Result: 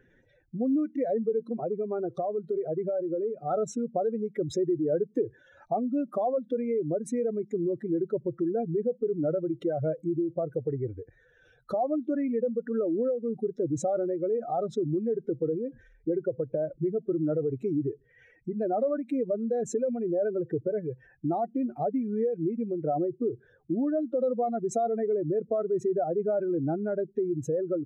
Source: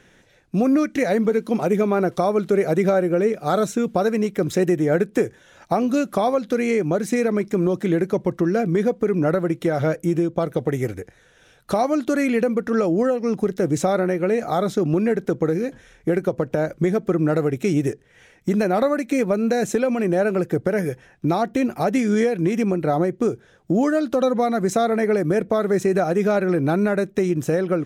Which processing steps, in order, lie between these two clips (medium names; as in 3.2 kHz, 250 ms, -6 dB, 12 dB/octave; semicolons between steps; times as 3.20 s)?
spectral contrast enhancement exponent 2.2; peaking EQ 190 Hz -11 dB 0.28 oct; 1.39–3.51 s: compression 2.5:1, threshold -21 dBFS, peak gain reduction 4.5 dB; trim -7 dB